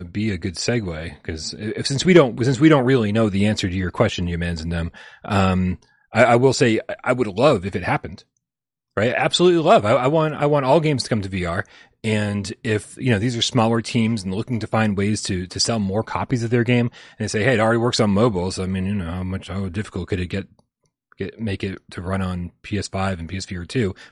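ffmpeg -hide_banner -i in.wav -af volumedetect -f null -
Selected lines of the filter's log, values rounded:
mean_volume: -20.3 dB
max_volume: -2.2 dB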